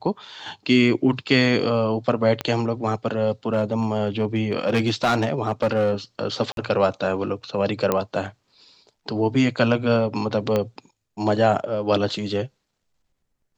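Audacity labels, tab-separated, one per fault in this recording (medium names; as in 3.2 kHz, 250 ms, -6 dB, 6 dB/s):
2.410000	2.410000	pop -11 dBFS
3.530000	5.930000	clipped -15 dBFS
6.520000	6.570000	dropout 52 ms
7.920000	7.920000	pop -7 dBFS
10.560000	10.560000	pop -10 dBFS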